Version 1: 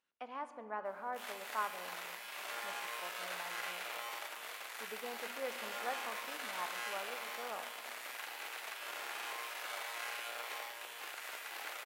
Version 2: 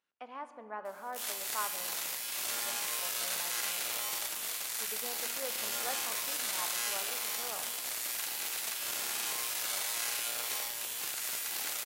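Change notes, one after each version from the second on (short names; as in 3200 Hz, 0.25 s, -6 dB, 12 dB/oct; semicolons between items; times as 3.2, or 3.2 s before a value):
background: remove three-band isolator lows -20 dB, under 370 Hz, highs -17 dB, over 2800 Hz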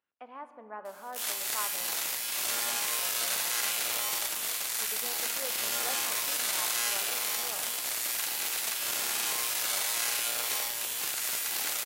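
speech: add bell 6400 Hz -11 dB 1.7 oct; background +4.5 dB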